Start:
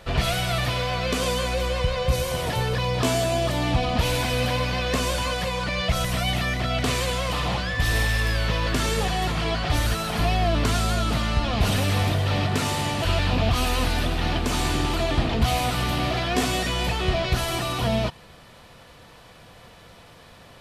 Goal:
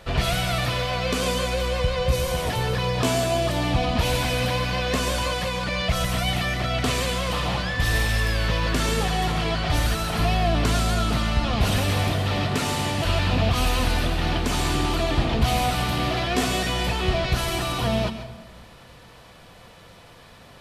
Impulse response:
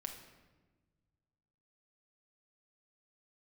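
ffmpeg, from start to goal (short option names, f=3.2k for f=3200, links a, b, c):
-filter_complex "[0:a]asplit=2[a][b];[1:a]atrim=start_sample=2205,adelay=140[c];[b][c]afir=irnorm=-1:irlink=0,volume=-7.5dB[d];[a][d]amix=inputs=2:normalize=0"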